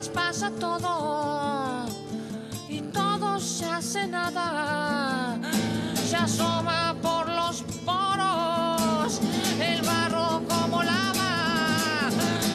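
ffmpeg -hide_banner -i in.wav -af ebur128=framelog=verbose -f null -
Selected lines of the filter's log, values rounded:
Integrated loudness:
  I:         -26.3 LUFS
  Threshold: -36.3 LUFS
Loudness range:
  LRA:         4.4 LU
  Threshold: -46.3 LUFS
  LRA low:   -29.0 LUFS
  LRA high:  -24.6 LUFS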